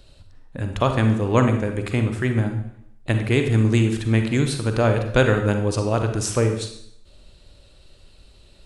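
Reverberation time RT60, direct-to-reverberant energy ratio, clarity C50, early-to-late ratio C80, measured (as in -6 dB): 0.70 s, 5.5 dB, 7.0 dB, 10.0 dB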